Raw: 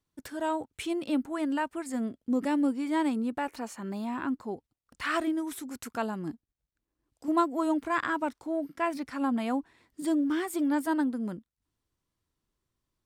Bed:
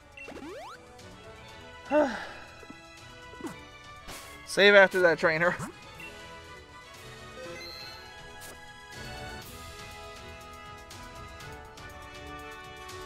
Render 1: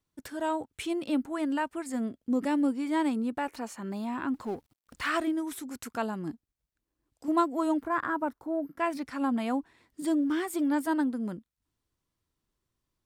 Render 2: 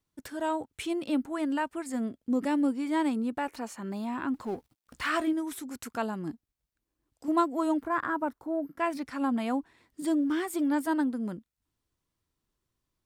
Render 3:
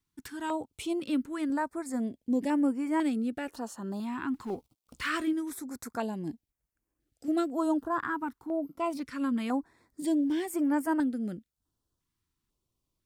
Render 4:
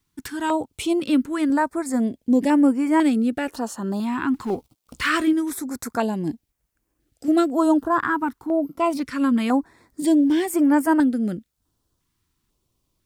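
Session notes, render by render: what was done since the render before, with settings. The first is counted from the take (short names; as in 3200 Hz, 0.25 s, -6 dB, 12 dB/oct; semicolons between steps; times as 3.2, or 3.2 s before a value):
4.34–5.1 G.711 law mismatch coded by mu; 7.82–8.79 band shelf 4400 Hz -11.5 dB 2.4 oct
4.51–5.33 doubler 16 ms -12 dB
stepped notch 2 Hz 580–3800 Hz
gain +10 dB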